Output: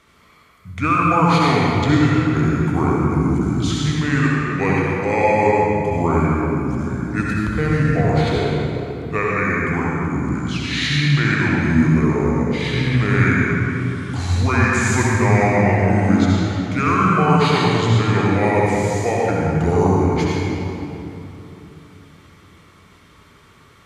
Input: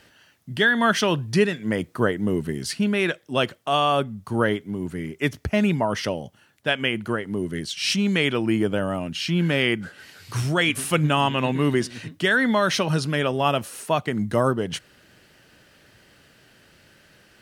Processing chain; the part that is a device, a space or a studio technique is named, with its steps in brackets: slowed and reverbed (varispeed -27%; reverb RT60 3.1 s, pre-delay 61 ms, DRR -4.5 dB); gain -1 dB

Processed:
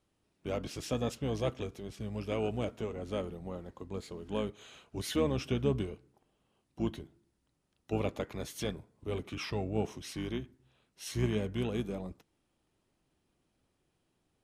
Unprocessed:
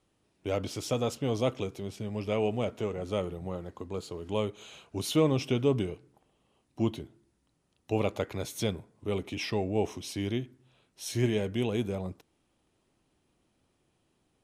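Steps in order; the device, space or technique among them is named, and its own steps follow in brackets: 2–2.76 high shelf 5900 Hz +5 dB; octave pedal (harmoniser -12 st -7 dB); gain -5 dB

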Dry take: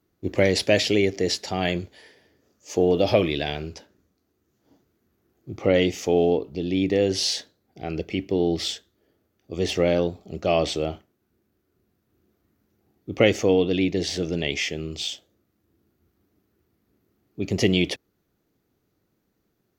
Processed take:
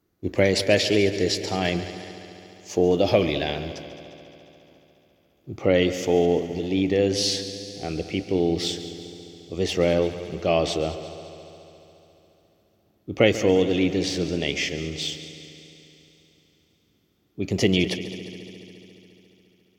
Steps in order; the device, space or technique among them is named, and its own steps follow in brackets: multi-head tape echo (multi-head echo 70 ms, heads second and third, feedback 69%, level -15 dB; wow and flutter 22 cents)

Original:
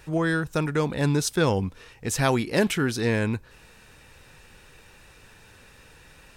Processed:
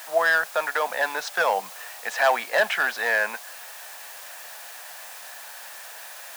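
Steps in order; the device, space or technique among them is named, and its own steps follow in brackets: drive-through speaker (BPF 400–3400 Hz; bell 1700 Hz +8.5 dB 0.34 oct; hard clip -19 dBFS, distortion -12 dB; white noise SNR 14 dB); Chebyshev high-pass 170 Hz, order 6; resonant low shelf 480 Hz -11.5 dB, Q 3; gain +4 dB

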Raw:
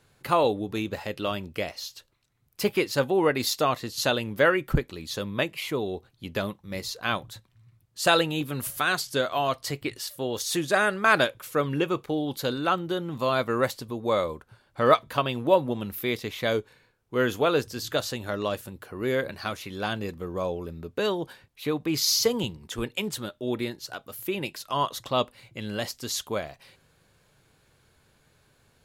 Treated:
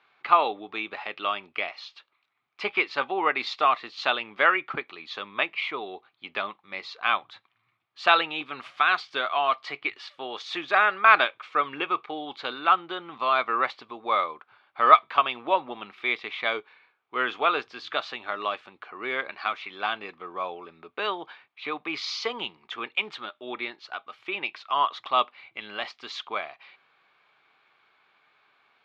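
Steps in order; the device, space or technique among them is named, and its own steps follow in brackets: phone earpiece (speaker cabinet 490–3800 Hz, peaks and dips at 520 Hz -8 dB, 780 Hz +5 dB, 1200 Hz +10 dB, 2300 Hz +9 dB, 3400 Hz +3 dB); gain -1 dB

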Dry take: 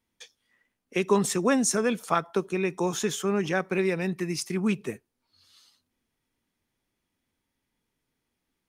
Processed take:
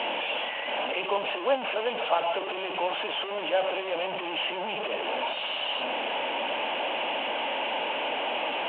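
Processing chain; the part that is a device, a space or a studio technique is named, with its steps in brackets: digital answering machine (BPF 360–3300 Hz; delta modulation 16 kbps, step -22 dBFS; speaker cabinet 390–3700 Hz, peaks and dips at 390 Hz -5 dB, 590 Hz +10 dB, 840 Hz +7 dB, 1300 Hz -8 dB, 1900 Hz -9 dB, 2900 Hz +10 dB); gain -2.5 dB

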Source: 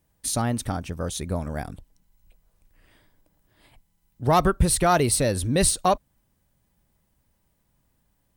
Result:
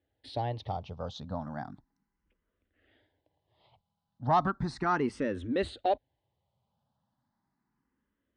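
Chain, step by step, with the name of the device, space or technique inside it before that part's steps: barber-pole phaser into a guitar amplifier (endless phaser +0.35 Hz; soft clip -11.5 dBFS, distortion -22 dB; speaker cabinet 93–4100 Hz, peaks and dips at 170 Hz -5 dB, 250 Hz +3 dB, 820 Hz +5 dB, 2400 Hz -7 dB); gain -4.5 dB

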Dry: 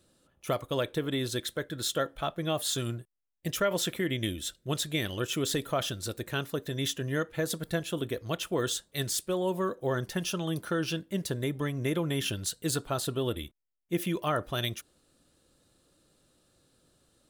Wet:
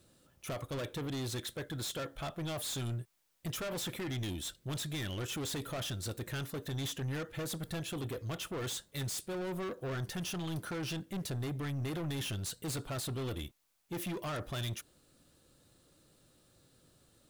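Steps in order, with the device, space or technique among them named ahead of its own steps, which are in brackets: open-reel tape (soft clip -36 dBFS, distortion -6 dB; bell 120 Hz +4.5 dB 0.99 oct; white noise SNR 38 dB)

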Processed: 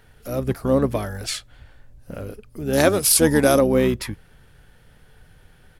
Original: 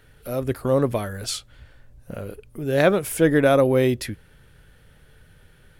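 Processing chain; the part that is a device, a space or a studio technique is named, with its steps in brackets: 2.73–3.59 band shelf 7600 Hz +14.5 dB; octave pedal (harmoniser -12 st -7 dB)

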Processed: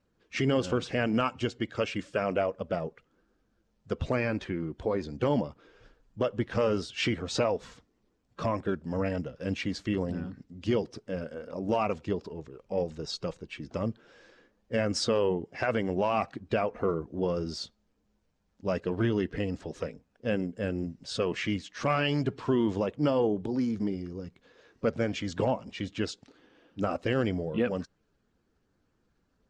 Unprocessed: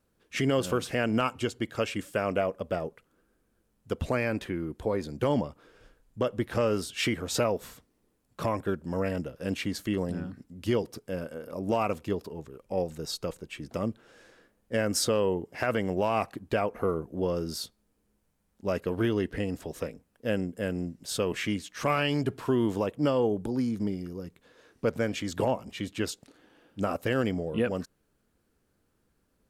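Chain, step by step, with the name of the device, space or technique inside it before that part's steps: clip after many re-uploads (LPF 6400 Hz 24 dB/oct; bin magnitudes rounded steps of 15 dB)

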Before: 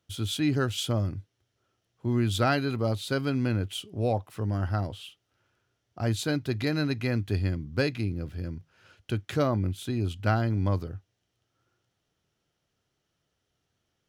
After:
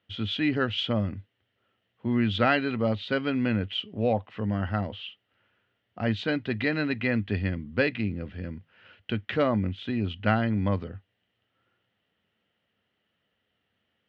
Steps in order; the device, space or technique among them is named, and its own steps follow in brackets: guitar cabinet (speaker cabinet 91–3600 Hz, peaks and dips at 140 Hz -9 dB, 210 Hz +7 dB, 350 Hz -4 dB, 510 Hz +3 dB, 1900 Hz +8 dB, 2900 Hz +7 dB); gain +1 dB

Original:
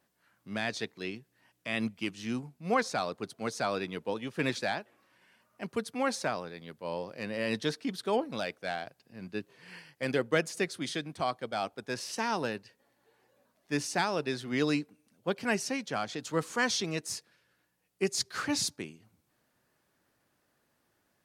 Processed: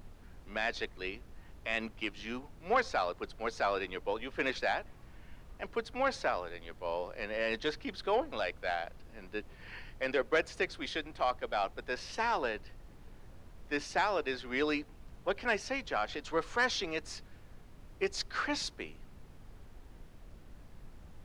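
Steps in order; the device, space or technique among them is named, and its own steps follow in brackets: aircraft cabin announcement (BPF 430–3500 Hz; soft clip -21 dBFS, distortion -20 dB; brown noise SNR 13 dB); bell 11000 Hz +3 dB 0.24 oct; gain +2 dB

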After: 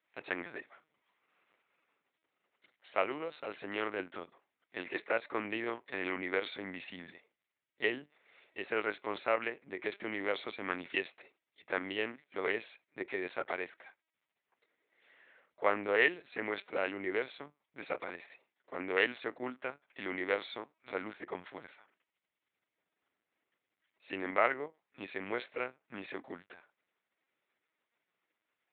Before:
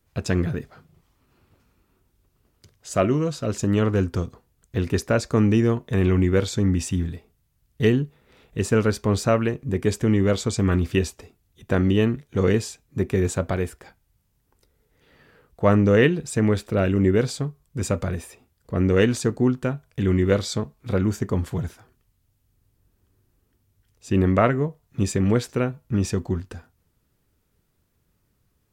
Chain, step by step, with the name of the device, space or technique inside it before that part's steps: talking toy (LPC vocoder at 8 kHz pitch kept; HPF 590 Hz 12 dB/oct; bell 2100 Hz +8 dB 0.53 oct); gain -7.5 dB

